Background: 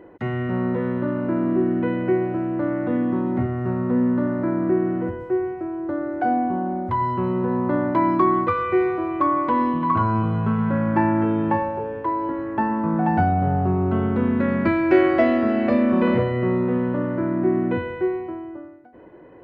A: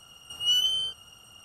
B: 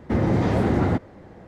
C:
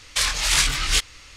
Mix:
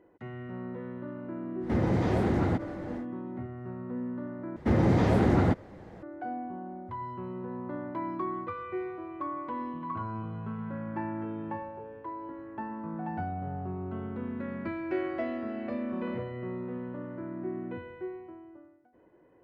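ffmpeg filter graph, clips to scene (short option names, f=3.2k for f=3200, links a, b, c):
-filter_complex "[2:a]asplit=2[a][b];[0:a]volume=-15.5dB[c];[a]acompressor=mode=upward:threshold=-34dB:ratio=2.5:attack=91:release=30:knee=2.83:detection=peak[d];[c]asplit=2[e][f];[e]atrim=end=4.564[g];[b]atrim=end=1.47,asetpts=PTS-STARTPTS,volume=-2.5dB[h];[f]atrim=start=6.026[i];[d]atrim=end=1.47,asetpts=PTS-STARTPTS,volume=-6dB,afade=t=in:d=0.1,afade=t=out:st=1.37:d=0.1,adelay=1600[j];[g][h]acrossfade=d=0.004:c1=hsin:c2=hsin[k];[k][i]acrossfade=d=0.004:c1=hsin:c2=hsin[l];[l][j]amix=inputs=2:normalize=0"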